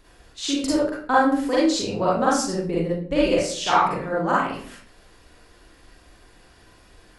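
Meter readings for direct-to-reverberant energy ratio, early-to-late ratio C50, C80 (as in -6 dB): -7.5 dB, -1.0 dB, 5.0 dB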